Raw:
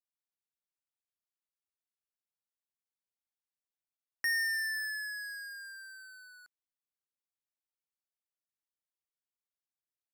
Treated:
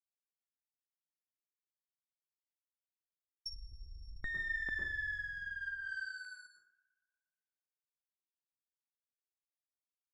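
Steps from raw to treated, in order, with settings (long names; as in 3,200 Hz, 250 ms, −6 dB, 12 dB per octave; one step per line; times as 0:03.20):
healed spectral selection 0:03.49–0:04.28, 2,200–7,400 Hz after
downward expander −50 dBFS
Butterworth low-pass 11,000 Hz
flat-topped bell 790 Hz −10.5 dB 1.1 octaves
feedback echo with a band-pass in the loop 118 ms, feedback 59%, band-pass 1,700 Hz, level −16 dB
asymmetric clip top −48 dBFS, bottom −29.5 dBFS
auto-filter notch square 0.32 Hz 260–2,600 Hz
on a send at −2 dB: convolution reverb RT60 0.55 s, pre-delay 102 ms
on the sum: treble cut that deepens with the level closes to 1,100 Hz, closed at −40.5 dBFS
one half of a high-frequency compander decoder only
level +9 dB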